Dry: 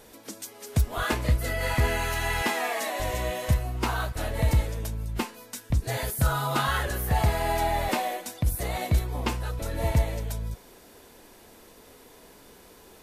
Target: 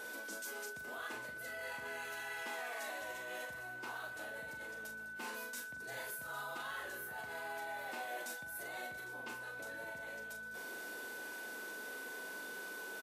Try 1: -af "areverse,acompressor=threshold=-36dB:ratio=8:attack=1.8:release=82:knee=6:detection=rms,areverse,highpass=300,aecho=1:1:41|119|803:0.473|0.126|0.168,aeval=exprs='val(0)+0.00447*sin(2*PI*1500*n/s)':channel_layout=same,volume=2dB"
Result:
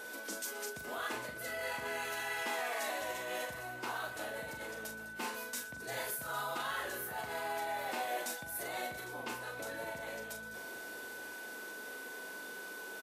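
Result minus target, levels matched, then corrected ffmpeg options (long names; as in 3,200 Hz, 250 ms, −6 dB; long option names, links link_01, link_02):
downward compressor: peak gain reduction −7 dB
-af "areverse,acompressor=threshold=-44dB:ratio=8:attack=1.8:release=82:knee=6:detection=rms,areverse,highpass=300,aecho=1:1:41|119|803:0.473|0.126|0.168,aeval=exprs='val(0)+0.00447*sin(2*PI*1500*n/s)':channel_layout=same,volume=2dB"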